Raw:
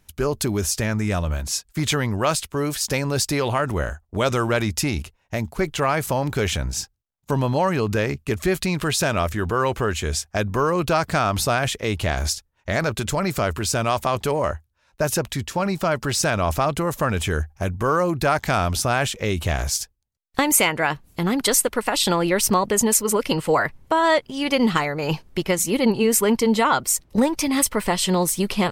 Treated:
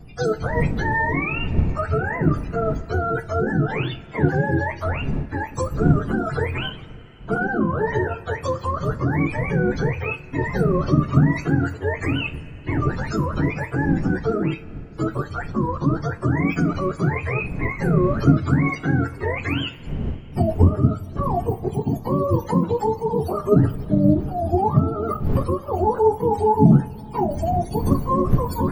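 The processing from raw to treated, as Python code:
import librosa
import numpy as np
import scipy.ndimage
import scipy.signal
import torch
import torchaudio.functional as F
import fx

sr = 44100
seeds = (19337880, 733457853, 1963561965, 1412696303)

p1 = fx.octave_mirror(x, sr, pivot_hz=440.0)
p2 = fx.dmg_wind(p1, sr, seeds[0], corner_hz=150.0, level_db=-32.0)
p3 = fx.high_shelf(p2, sr, hz=12000.0, db=-9.5, at=(6.58, 7.62))
p4 = fx.level_steps(p3, sr, step_db=17)
p5 = p3 + F.gain(torch.from_numpy(p4), -2.0).numpy()
p6 = fx.rev_double_slope(p5, sr, seeds[1], early_s=0.27, late_s=3.9, knee_db=-21, drr_db=8.0)
y = F.gain(torch.from_numpy(p6), -1.0).numpy()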